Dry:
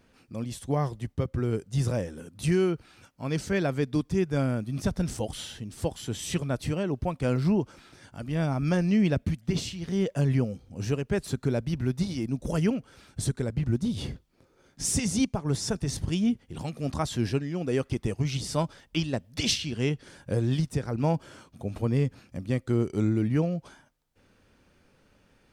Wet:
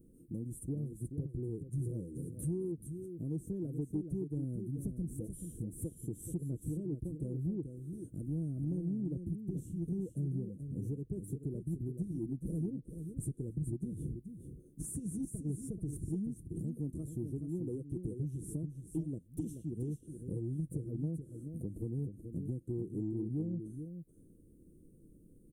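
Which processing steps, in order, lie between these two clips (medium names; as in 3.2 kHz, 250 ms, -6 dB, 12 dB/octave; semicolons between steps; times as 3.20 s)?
compression 5:1, threshold -40 dBFS, peak gain reduction 18 dB; elliptic band-stop 370–9700 Hz, stop band 40 dB; tone controls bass -2 dB, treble +7 dB; comb 6.2 ms, depth 33%; delay 431 ms -8 dB; saturation -27.5 dBFS, distortion -32 dB; treble shelf 5.6 kHz -11 dB; trim +5.5 dB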